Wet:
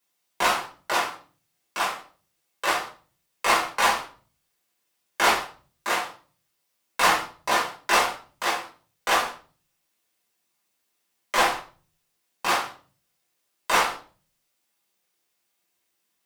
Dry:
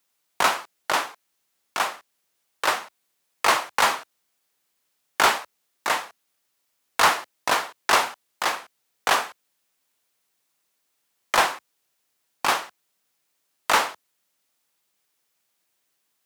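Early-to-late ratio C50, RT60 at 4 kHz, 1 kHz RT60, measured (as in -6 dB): 9.0 dB, 0.35 s, 0.35 s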